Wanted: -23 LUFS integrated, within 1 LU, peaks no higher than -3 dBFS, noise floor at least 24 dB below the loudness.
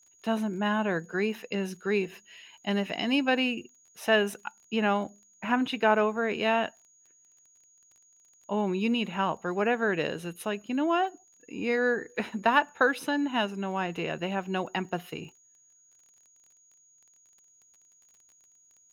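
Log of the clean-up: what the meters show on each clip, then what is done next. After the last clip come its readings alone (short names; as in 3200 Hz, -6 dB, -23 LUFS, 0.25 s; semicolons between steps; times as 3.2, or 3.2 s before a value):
ticks 22/s; steady tone 6700 Hz; tone level -59 dBFS; loudness -28.5 LUFS; peak -9.5 dBFS; loudness target -23.0 LUFS
-> de-click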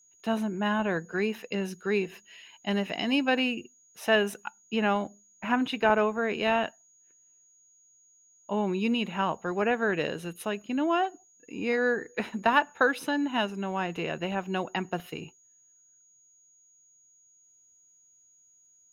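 ticks 0/s; steady tone 6700 Hz; tone level -59 dBFS
-> notch 6700 Hz, Q 30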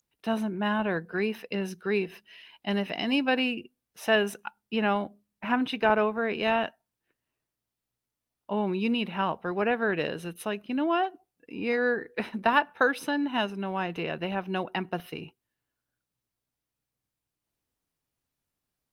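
steady tone none; loudness -28.5 LUFS; peak -9.5 dBFS; loudness target -23.0 LUFS
-> gain +5.5 dB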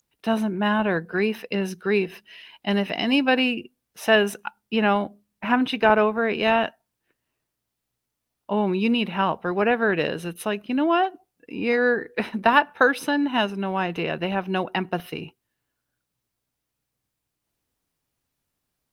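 loudness -23.0 LUFS; peak -4.0 dBFS; noise floor -82 dBFS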